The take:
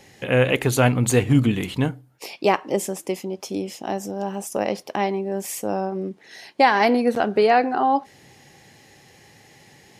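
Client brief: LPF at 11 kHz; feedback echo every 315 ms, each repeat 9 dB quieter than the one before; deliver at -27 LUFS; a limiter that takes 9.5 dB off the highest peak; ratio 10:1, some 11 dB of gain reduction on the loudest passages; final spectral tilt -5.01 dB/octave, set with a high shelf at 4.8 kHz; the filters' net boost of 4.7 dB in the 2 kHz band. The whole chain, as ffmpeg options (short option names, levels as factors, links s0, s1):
-af "lowpass=11000,equalizer=f=2000:t=o:g=6.5,highshelf=f=4800:g=-4,acompressor=threshold=0.0794:ratio=10,alimiter=limit=0.119:level=0:latency=1,aecho=1:1:315|630|945|1260:0.355|0.124|0.0435|0.0152,volume=1.33"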